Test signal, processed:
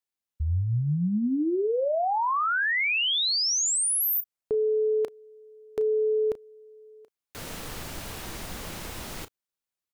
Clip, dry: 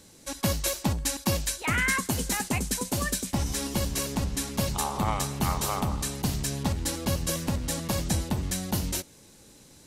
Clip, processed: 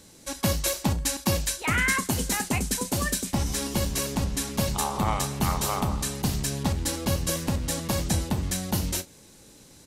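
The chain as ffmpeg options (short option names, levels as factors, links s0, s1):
-filter_complex "[0:a]asplit=2[s0][s1];[s1]adelay=34,volume=0.2[s2];[s0][s2]amix=inputs=2:normalize=0,volume=1.19"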